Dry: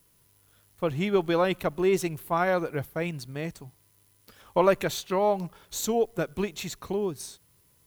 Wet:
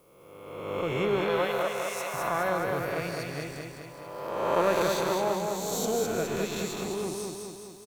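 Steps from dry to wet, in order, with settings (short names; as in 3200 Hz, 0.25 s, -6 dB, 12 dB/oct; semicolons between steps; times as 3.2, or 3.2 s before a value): spectral swells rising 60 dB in 1.48 s; 1.24–2.14 elliptic high-pass 490 Hz; feedback echo 0.208 s, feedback 58%, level -3.5 dB; gain -6.5 dB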